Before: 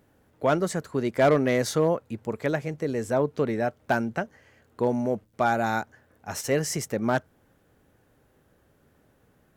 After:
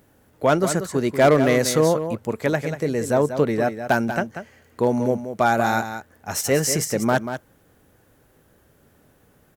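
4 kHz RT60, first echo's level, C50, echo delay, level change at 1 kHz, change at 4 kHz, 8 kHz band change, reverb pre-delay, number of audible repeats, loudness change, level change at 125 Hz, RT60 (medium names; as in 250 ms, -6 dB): no reverb, -9.5 dB, no reverb, 188 ms, +5.0 dB, +7.0 dB, +9.0 dB, no reverb, 1, +5.0 dB, +5.0 dB, no reverb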